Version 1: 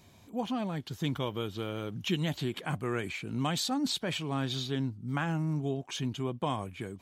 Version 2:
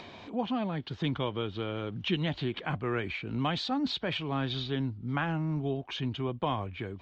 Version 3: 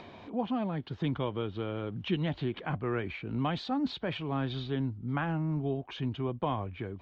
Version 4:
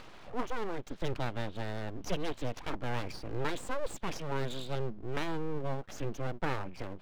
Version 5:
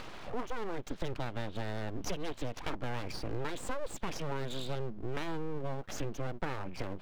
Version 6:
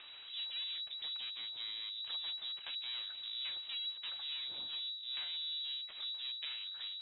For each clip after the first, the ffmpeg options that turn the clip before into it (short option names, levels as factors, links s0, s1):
-filter_complex "[0:a]lowpass=f=4000:w=0.5412,lowpass=f=4000:w=1.3066,asubboost=boost=4.5:cutoff=69,acrossover=split=250[s0][s1];[s1]acompressor=mode=upward:threshold=0.0126:ratio=2.5[s2];[s0][s2]amix=inputs=2:normalize=0,volume=1.26"
-af "highshelf=f=2500:g=-10"
-af "aeval=exprs='abs(val(0))':c=same"
-af "acompressor=threshold=0.0158:ratio=6,volume=1.88"
-af "flanger=delay=3.3:depth=3.5:regen=-66:speed=0.83:shape=sinusoidal,lowpass=f=3300:t=q:w=0.5098,lowpass=f=3300:t=q:w=0.6013,lowpass=f=3300:t=q:w=0.9,lowpass=f=3300:t=q:w=2.563,afreqshift=-3900,volume=0.631"